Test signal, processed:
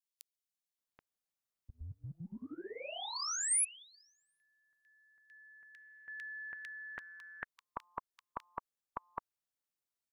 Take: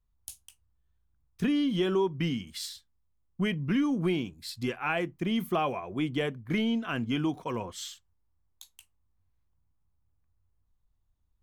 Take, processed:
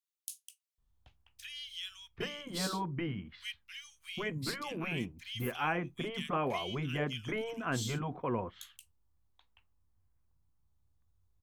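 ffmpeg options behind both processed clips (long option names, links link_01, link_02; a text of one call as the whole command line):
ffmpeg -i in.wav -filter_complex "[0:a]afftfilt=real='re*lt(hypot(re,im),0.251)':imag='im*lt(hypot(re,im),0.251)':win_size=1024:overlap=0.75,acrossover=split=2400[link_01][link_02];[link_01]adelay=780[link_03];[link_03][link_02]amix=inputs=2:normalize=0" out.wav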